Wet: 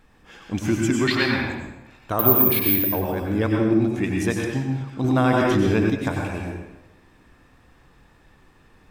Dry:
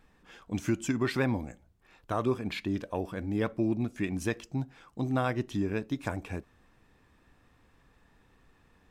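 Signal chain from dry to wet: 1.07–1.49 graphic EQ 125/500/2000/4000/8000 Hz -7/-9/+4/+10/-10 dB; 2.19–2.76 careless resampling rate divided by 3×, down filtered, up zero stuff; reverb RT60 1.0 s, pre-delay 89 ms, DRR -0.5 dB; 5.04–5.9 fast leveller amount 70%; gain +6 dB

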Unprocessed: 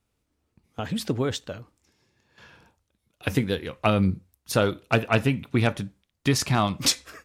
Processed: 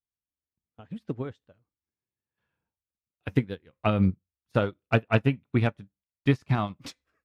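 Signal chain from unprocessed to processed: tone controls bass +3 dB, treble -12 dB; upward expander 2.5:1, over -36 dBFS

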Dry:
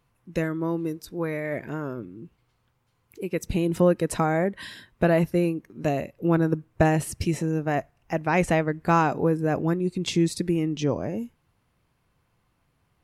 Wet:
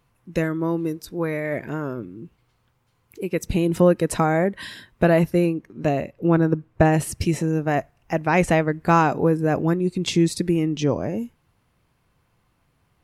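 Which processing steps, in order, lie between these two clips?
5.45–6.92 high shelf 8200 Hz -> 4400 Hz -10 dB; gain +3.5 dB

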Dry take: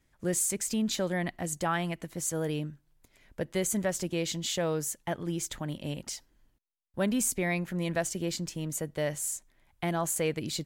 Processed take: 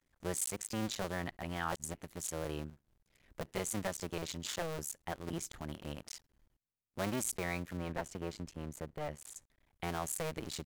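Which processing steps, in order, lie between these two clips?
cycle switcher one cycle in 2, muted; 1.43–1.94 reverse; 7.77–9.36 high shelf 3000 Hz -11 dB; gain -5 dB

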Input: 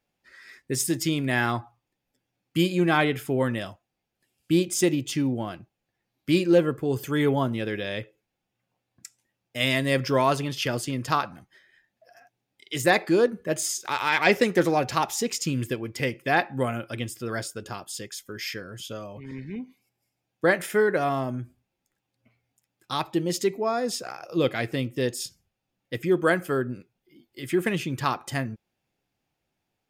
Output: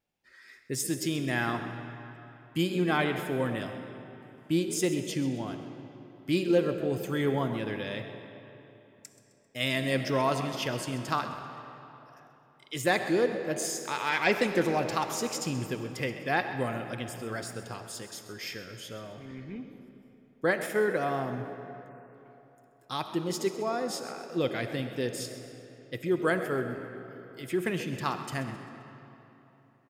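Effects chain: frequency-shifting echo 0.131 s, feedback 44%, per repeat +63 Hz, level -15 dB; vibrato 1.9 Hz 25 cents; on a send at -8.5 dB: reverb RT60 3.4 s, pre-delay 20 ms; on the sum: spectral delete 21.89–22.15, 2800–7300 Hz; gain -5.5 dB

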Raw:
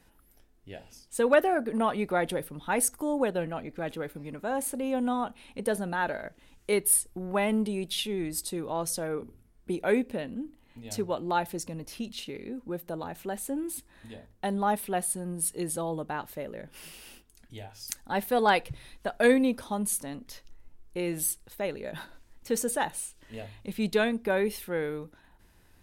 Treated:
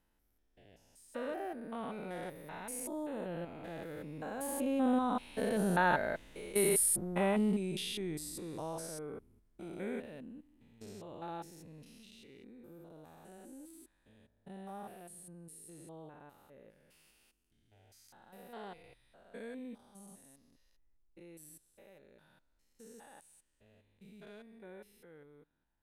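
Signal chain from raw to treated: stepped spectrum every 0.2 s; Doppler pass-by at 5.97, 10 m/s, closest 8.5 m; gain +4 dB

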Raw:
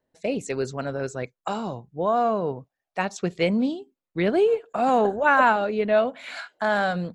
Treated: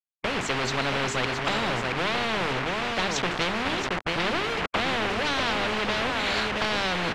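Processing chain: compressor, threshold -23 dBFS, peak gain reduction 9.5 dB; feedback echo 0.675 s, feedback 22%, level -12 dB; AGC gain up to 14 dB; soft clip -18 dBFS, distortion -8 dB; bell 1200 Hz -5.5 dB 2.4 oct; notches 50/100/150/200/250/300/350/400/450 Hz; bit-crush 6-bit; LPF 1600 Hz 12 dB/oct; spectral compressor 4:1; gain +3.5 dB

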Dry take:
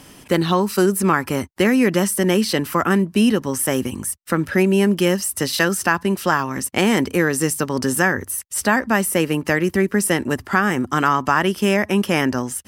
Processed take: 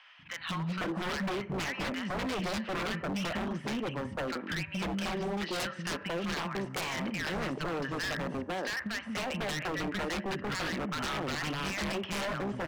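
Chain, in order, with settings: compressor 5:1, threshold -17 dBFS, peak gain reduction 6.5 dB; speaker cabinet 110–3100 Hz, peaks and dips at 120 Hz -5 dB, 250 Hz -5 dB, 390 Hz -6 dB, 630 Hz +4 dB; three bands offset in time highs, lows, mids 0.19/0.5 s, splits 220/1100 Hz; Schroeder reverb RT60 0.83 s, combs from 28 ms, DRR 17.5 dB; wavefolder -25 dBFS; gain -3.5 dB

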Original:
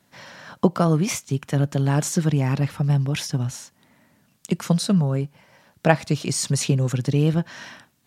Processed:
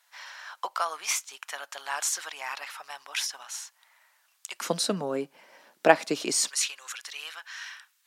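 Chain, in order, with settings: HPF 890 Hz 24 dB/oct, from 4.61 s 290 Hz, from 6.49 s 1200 Hz

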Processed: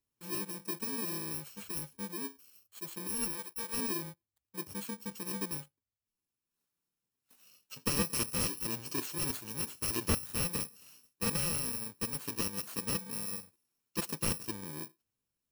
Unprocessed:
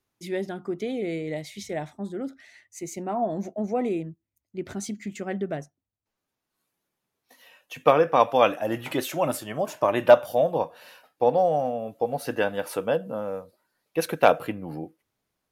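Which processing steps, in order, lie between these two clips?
FFT order left unsorted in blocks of 64 samples; 3.32–3.77 bell 200 Hz -15 dB 1.4 oct; slew limiter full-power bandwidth 690 Hz; gain -7.5 dB

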